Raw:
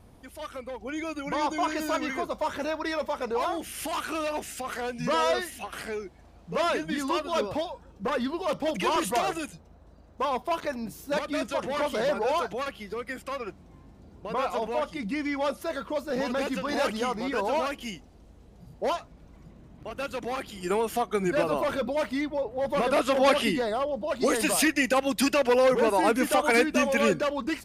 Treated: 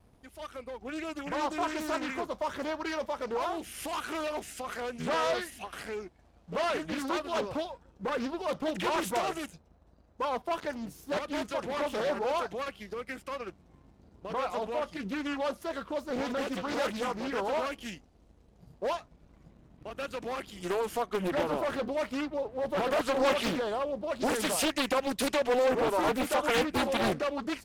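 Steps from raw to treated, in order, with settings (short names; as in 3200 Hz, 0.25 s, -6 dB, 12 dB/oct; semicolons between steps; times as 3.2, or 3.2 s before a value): vibrato 0.32 Hz 6.2 cents; sample leveller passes 1; Doppler distortion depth 0.82 ms; gain -7.5 dB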